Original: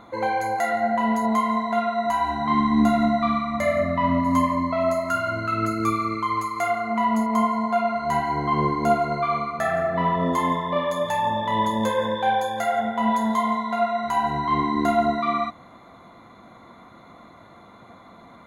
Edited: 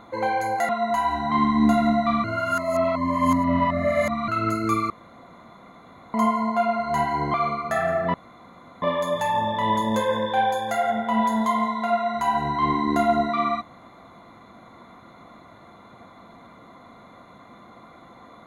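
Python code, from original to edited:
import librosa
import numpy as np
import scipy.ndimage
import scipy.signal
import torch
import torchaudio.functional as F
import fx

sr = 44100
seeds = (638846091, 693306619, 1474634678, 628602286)

y = fx.edit(x, sr, fx.cut(start_s=0.69, length_s=1.16),
    fx.reverse_span(start_s=3.4, length_s=2.04),
    fx.room_tone_fill(start_s=6.06, length_s=1.24),
    fx.cut(start_s=8.5, length_s=0.73),
    fx.room_tone_fill(start_s=10.03, length_s=0.68), tone=tone)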